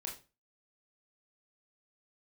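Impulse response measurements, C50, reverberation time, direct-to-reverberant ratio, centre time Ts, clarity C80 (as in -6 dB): 8.5 dB, 0.30 s, -1.0 dB, 25 ms, 14.5 dB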